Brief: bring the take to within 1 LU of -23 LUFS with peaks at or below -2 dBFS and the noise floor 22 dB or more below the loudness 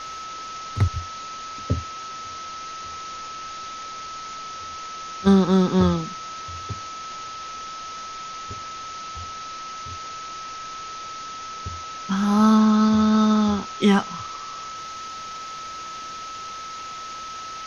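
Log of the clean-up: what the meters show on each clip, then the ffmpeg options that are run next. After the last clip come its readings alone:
steady tone 1300 Hz; tone level -33 dBFS; noise floor -35 dBFS; noise floor target -48 dBFS; loudness -25.5 LUFS; peak -5.5 dBFS; loudness target -23.0 LUFS
-> -af "bandreject=f=1.3k:w=30"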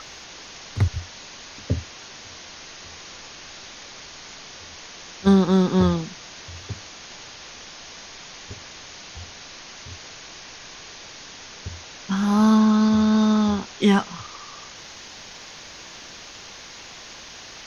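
steady tone none; noise floor -42 dBFS; noise floor target -43 dBFS
-> -af "afftdn=nr=6:nf=-42"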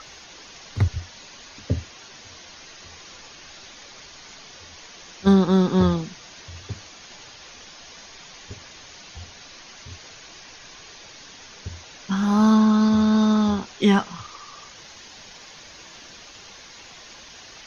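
noise floor -45 dBFS; loudness -20.0 LUFS; peak -6.0 dBFS; loudness target -23.0 LUFS
-> -af "volume=-3dB"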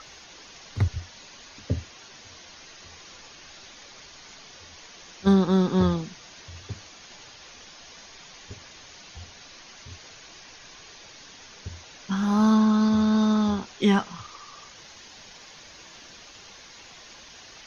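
loudness -23.0 LUFS; peak -9.0 dBFS; noise floor -48 dBFS

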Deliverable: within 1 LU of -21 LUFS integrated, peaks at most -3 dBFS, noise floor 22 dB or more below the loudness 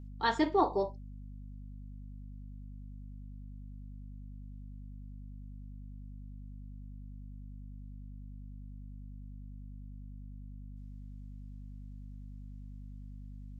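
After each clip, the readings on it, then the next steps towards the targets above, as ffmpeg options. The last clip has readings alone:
hum 50 Hz; harmonics up to 250 Hz; hum level -43 dBFS; loudness -41.5 LUFS; peak -15.0 dBFS; loudness target -21.0 LUFS
-> -af "bandreject=f=50:t=h:w=6,bandreject=f=100:t=h:w=6,bandreject=f=150:t=h:w=6,bandreject=f=200:t=h:w=6,bandreject=f=250:t=h:w=6"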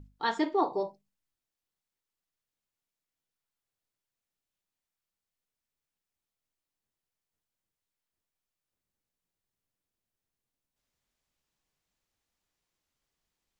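hum none; loudness -31.0 LUFS; peak -14.5 dBFS; loudness target -21.0 LUFS
-> -af "volume=10dB"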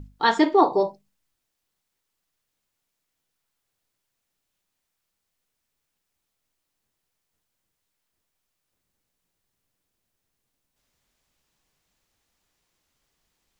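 loudness -21.0 LUFS; peak -4.5 dBFS; noise floor -80 dBFS

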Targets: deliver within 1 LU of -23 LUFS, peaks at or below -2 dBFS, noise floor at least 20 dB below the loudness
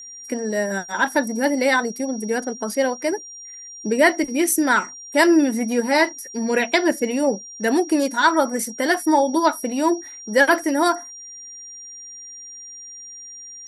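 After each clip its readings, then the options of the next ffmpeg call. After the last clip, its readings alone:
steady tone 5700 Hz; tone level -36 dBFS; loudness -20.5 LUFS; peak -3.5 dBFS; loudness target -23.0 LUFS
-> -af "bandreject=f=5.7k:w=30"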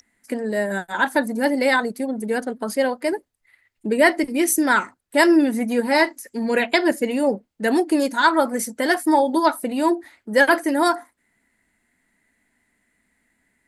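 steady tone none; loudness -20.5 LUFS; peak -3.5 dBFS; loudness target -23.0 LUFS
-> -af "volume=-2.5dB"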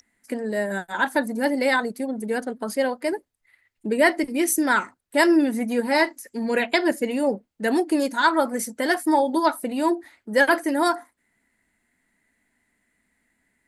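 loudness -23.0 LUFS; peak -6.0 dBFS; noise floor -73 dBFS

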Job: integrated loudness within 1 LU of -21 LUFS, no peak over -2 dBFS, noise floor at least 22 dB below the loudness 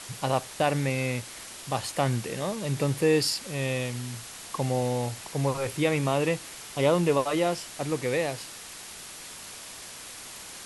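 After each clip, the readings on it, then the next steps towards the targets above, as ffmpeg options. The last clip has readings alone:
noise floor -43 dBFS; noise floor target -50 dBFS; loudness -28.0 LUFS; peak -10.5 dBFS; loudness target -21.0 LUFS
-> -af "afftdn=nr=7:nf=-43"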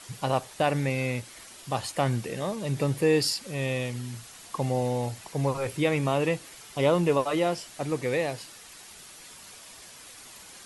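noise floor -48 dBFS; noise floor target -50 dBFS
-> -af "afftdn=nr=6:nf=-48"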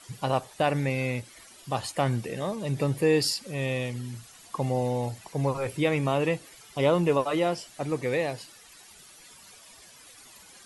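noise floor -52 dBFS; loudness -28.0 LUFS; peak -10.5 dBFS; loudness target -21.0 LUFS
-> -af "volume=7dB"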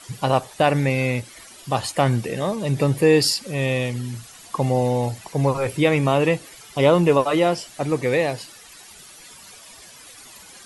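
loudness -21.0 LUFS; peak -3.5 dBFS; noise floor -45 dBFS

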